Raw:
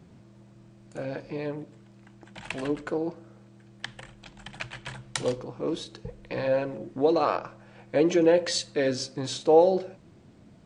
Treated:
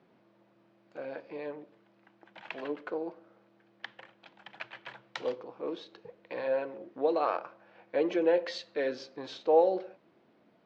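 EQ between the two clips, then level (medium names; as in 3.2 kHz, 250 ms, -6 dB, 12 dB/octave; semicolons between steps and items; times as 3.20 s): band-pass 390–6100 Hz; distance through air 210 m; -3.0 dB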